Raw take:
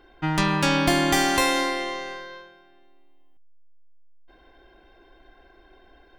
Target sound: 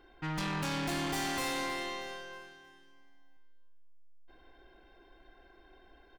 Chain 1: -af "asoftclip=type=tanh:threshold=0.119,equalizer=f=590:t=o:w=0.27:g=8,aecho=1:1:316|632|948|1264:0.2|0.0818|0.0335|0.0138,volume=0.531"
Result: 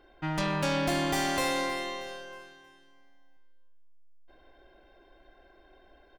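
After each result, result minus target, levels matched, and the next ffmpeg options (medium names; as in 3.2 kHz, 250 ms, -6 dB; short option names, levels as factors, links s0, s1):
saturation: distortion -6 dB; 500 Hz band +3.0 dB
-af "asoftclip=type=tanh:threshold=0.0473,equalizer=f=590:t=o:w=0.27:g=8,aecho=1:1:316|632|948|1264:0.2|0.0818|0.0335|0.0138,volume=0.531"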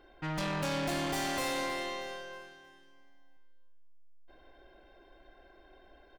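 500 Hz band +3.5 dB
-af "asoftclip=type=tanh:threshold=0.0473,equalizer=f=590:t=o:w=0.27:g=-2.5,aecho=1:1:316|632|948|1264:0.2|0.0818|0.0335|0.0138,volume=0.531"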